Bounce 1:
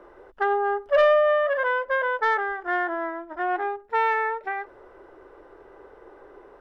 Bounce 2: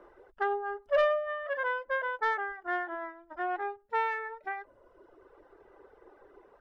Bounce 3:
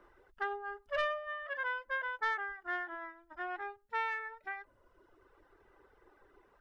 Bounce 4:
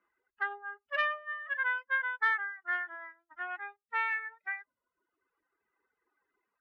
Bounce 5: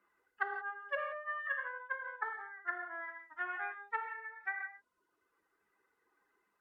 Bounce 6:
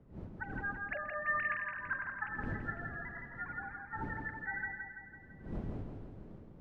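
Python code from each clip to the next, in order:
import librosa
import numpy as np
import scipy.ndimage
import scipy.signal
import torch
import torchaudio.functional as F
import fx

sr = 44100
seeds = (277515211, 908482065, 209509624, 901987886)

y1 = fx.dereverb_blind(x, sr, rt60_s=1.1)
y1 = y1 * librosa.db_to_amplitude(-6.0)
y2 = fx.peak_eq(y1, sr, hz=530.0, db=-11.5, octaves=1.9)
y3 = fx.bin_expand(y2, sr, power=1.5)
y3 = fx.bandpass_q(y3, sr, hz=1900.0, q=1.4)
y3 = y3 * librosa.db_to_amplitude(8.5)
y4 = fx.env_lowpass_down(y3, sr, base_hz=590.0, full_db=-30.0)
y4 = fx.rev_gated(y4, sr, seeds[0], gate_ms=200, shape='flat', drr_db=3.5)
y4 = fx.hpss(y4, sr, part='harmonic', gain_db=-3)
y4 = y4 * librosa.db_to_amplitude(4.0)
y5 = fx.sine_speech(y4, sr)
y5 = fx.dmg_wind(y5, sr, seeds[1], corner_hz=220.0, level_db=-47.0)
y5 = fx.echo_feedback(y5, sr, ms=167, feedback_pct=55, wet_db=-5.0)
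y5 = y5 * librosa.db_to_amplitude(-1.0)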